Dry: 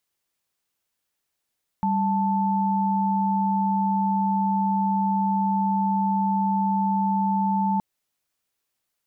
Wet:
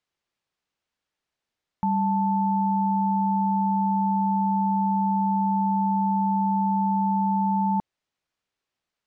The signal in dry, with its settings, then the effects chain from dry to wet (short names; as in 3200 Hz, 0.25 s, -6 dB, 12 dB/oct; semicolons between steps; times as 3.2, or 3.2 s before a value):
chord G3/A5 sine, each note -22.5 dBFS 5.97 s
air absorption 110 m